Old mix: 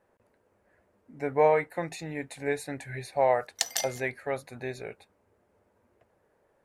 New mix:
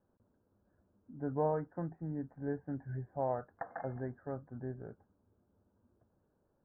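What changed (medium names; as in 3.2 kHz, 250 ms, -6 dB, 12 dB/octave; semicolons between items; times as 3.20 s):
speech: add high-order bell 1 kHz -11.5 dB 3 oct; master: add steep low-pass 1.6 kHz 72 dB/octave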